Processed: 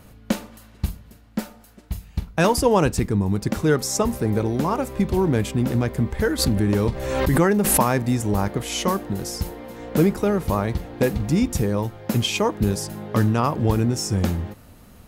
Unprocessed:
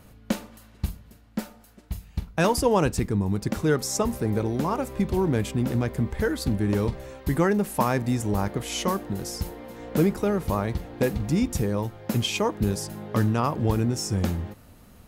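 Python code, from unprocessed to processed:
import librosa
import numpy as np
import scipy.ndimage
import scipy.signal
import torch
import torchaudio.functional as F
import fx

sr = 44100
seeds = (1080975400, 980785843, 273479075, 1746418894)

y = fx.pre_swell(x, sr, db_per_s=38.0, at=(6.38, 7.81), fade=0.02)
y = F.gain(torch.from_numpy(y), 3.5).numpy()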